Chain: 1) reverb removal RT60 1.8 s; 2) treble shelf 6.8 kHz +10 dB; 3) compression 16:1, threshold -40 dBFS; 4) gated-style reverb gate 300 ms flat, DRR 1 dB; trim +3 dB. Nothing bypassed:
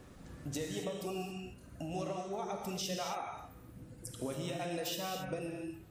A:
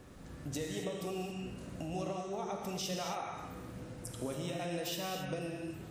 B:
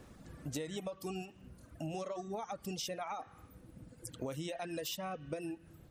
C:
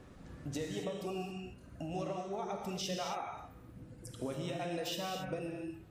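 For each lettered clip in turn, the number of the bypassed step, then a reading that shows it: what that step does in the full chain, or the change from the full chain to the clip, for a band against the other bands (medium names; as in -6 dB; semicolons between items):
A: 1, momentary loudness spread change -4 LU; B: 4, momentary loudness spread change +4 LU; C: 2, 8 kHz band -3.5 dB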